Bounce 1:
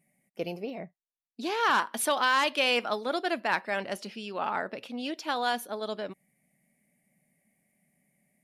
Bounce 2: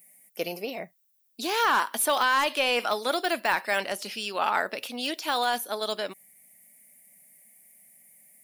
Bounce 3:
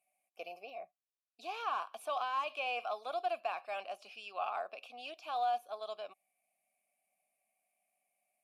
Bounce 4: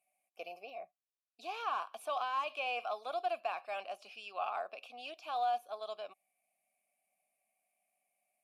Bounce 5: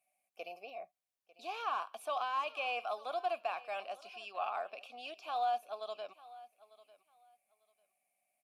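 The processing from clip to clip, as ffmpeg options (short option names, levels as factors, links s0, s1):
-af "aemphasis=mode=production:type=riaa,deesser=0.85,volume=1.88"
-filter_complex "[0:a]asplit=3[s0][s1][s2];[s0]bandpass=f=730:t=q:w=8,volume=1[s3];[s1]bandpass=f=1090:t=q:w=8,volume=0.501[s4];[s2]bandpass=f=2440:t=q:w=8,volume=0.355[s5];[s3][s4][s5]amix=inputs=3:normalize=0,highshelf=f=3400:g=8,volume=0.668"
-af anull
-af "aecho=1:1:897|1794:0.106|0.0201"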